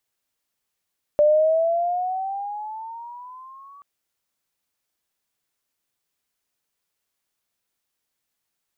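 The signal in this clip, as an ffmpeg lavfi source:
ffmpeg -f lavfi -i "aevalsrc='pow(10,(-12-31*t/2.63)/20)*sin(2*PI*590*2.63/(11.5*log(2)/12)*(exp(11.5*log(2)/12*t/2.63)-1))':duration=2.63:sample_rate=44100" out.wav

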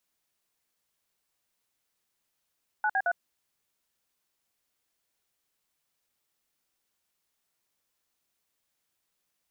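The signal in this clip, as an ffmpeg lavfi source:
ffmpeg -f lavfi -i "aevalsrc='0.0501*clip(min(mod(t,0.11),0.056-mod(t,0.11))/0.002,0,1)*(eq(floor(t/0.11),0)*(sin(2*PI*852*mod(t,0.11))+sin(2*PI*1477*mod(t,0.11)))+eq(floor(t/0.11),1)*(sin(2*PI*770*mod(t,0.11))+sin(2*PI*1633*mod(t,0.11)))+eq(floor(t/0.11),2)*(sin(2*PI*697*mod(t,0.11))+sin(2*PI*1477*mod(t,0.11))))':duration=0.33:sample_rate=44100" out.wav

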